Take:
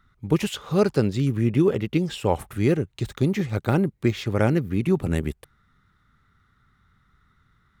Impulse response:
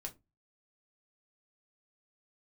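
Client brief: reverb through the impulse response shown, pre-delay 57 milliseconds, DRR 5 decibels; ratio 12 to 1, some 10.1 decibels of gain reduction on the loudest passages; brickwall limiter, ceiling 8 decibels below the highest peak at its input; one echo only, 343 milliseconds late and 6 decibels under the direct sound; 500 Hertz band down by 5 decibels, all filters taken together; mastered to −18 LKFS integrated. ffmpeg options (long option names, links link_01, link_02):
-filter_complex "[0:a]equalizer=frequency=500:width_type=o:gain=-7,acompressor=threshold=-27dB:ratio=12,alimiter=level_in=0.5dB:limit=-24dB:level=0:latency=1,volume=-0.5dB,aecho=1:1:343:0.501,asplit=2[link_01][link_02];[1:a]atrim=start_sample=2205,adelay=57[link_03];[link_02][link_03]afir=irnorm=-1:irlink=0,volume=-2dB[link_04];[link_01][link_04]amix=inputs=2:normalize=0,volume=15dB"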